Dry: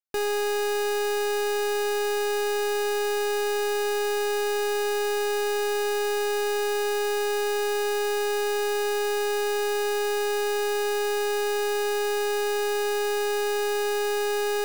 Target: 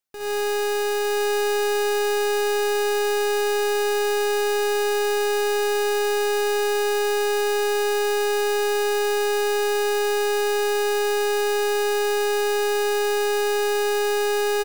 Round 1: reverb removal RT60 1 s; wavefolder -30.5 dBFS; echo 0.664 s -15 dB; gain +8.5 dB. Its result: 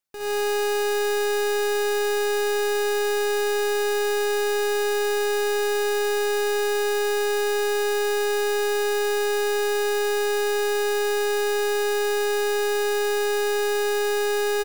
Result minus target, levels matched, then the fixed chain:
echo 0.244 s early
reverb removal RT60 1 s; wavefolder -30.5 dBFS; echo 0.908 s -15 dB; gain +8.5 dB

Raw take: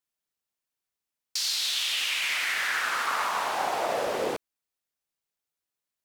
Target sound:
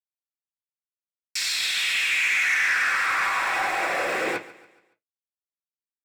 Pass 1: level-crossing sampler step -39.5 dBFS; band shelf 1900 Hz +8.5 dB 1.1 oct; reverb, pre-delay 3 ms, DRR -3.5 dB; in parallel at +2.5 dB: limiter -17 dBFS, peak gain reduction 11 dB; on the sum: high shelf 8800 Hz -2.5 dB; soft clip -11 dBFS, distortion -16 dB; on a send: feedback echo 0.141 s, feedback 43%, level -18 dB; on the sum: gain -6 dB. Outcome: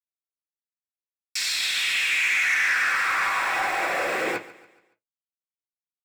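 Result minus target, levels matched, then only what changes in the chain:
level-crossing sampler: distortion +9 dB
change: level-crossing sampler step -46 dBFS

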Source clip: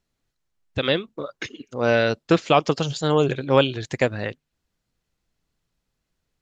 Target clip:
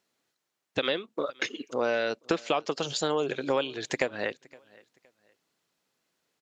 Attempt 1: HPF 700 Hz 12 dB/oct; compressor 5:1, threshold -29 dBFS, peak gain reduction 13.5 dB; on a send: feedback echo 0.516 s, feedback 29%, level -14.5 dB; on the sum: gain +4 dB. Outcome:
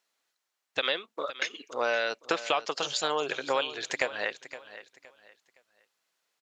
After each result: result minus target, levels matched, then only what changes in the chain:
250 Hz band -8.0 dB; echo-to-direct +10 dB
change: HPF 300 Hz 12 dB/oct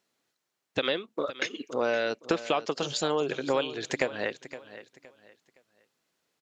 echo-to-direct +10 dB
change: feedback echo 0.516 s, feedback 29%, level -24.5 dB

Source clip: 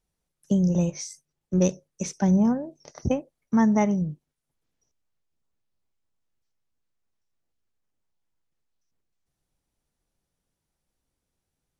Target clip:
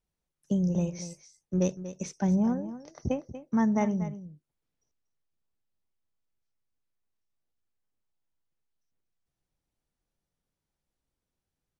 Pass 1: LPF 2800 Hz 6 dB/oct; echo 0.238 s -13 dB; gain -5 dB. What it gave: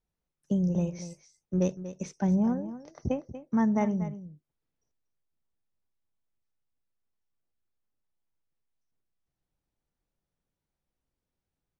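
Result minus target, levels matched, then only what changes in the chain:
8000 Hz band -5.0 dB
change: LPF 6500 Hz 6 dB/oct

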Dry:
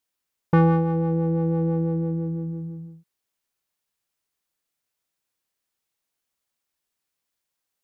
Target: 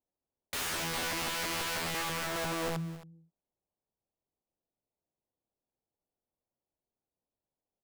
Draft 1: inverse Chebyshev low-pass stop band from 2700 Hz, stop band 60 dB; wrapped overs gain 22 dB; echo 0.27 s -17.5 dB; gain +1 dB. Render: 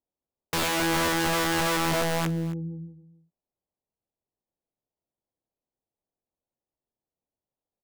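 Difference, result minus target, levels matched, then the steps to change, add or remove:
wrapped overs: distortion -6 dB
change: wrapped overs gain 31 dB

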